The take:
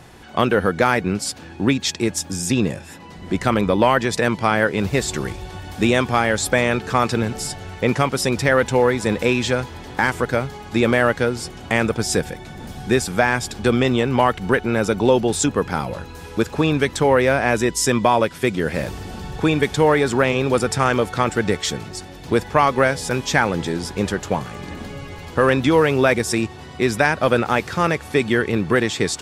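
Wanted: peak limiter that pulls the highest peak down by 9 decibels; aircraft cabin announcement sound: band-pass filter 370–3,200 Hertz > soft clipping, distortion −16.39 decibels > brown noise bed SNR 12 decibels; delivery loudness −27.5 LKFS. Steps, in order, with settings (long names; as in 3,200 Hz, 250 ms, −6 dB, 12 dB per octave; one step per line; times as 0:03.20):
brickwall limiter −11.5 dBFS
band-pass filter 370–3,200 Hz
soft clipping −16.5 dBFS
brown noise bed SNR 12 dB
level +1 dB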